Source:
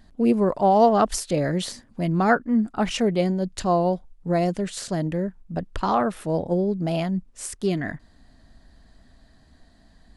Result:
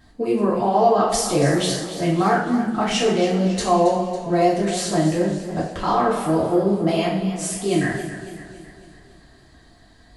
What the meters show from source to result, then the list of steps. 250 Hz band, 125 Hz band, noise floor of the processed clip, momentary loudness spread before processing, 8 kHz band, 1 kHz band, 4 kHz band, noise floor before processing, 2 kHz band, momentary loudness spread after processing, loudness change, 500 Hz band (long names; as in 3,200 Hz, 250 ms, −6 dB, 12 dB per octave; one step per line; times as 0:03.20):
+2.5 dB, +2.5 dB, −51 dBFS, 11 LU, +7.0 dB, +3.0 dB, +7.0 dB, −56 dBFS, +3.5 dB, 7 LU, +3.0 dB, +3.5 dB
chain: low-shelf EQ 72 Hz −10.5 dB
brickwall limiter −17 dBFS, peak gain reduction 9.5 dB
coupled-rooms reverb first 0.54 s, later 2.3 s, DRR −6.5 dB
feedback echo with a swinging delay time 277 ms, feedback 52%, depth 65 cents, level −12 dB